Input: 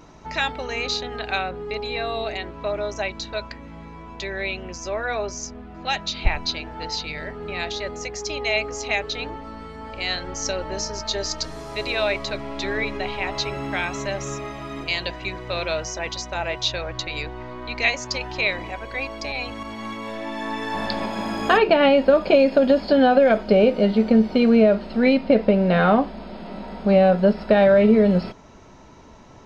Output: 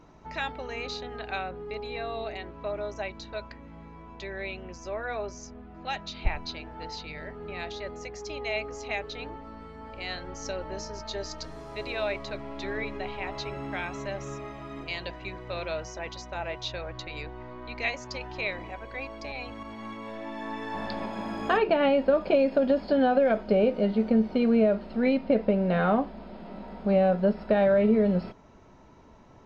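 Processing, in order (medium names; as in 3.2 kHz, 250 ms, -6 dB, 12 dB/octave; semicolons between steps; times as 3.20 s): treble shelf 3.3 kHz -9 dB; trim -6.5 dB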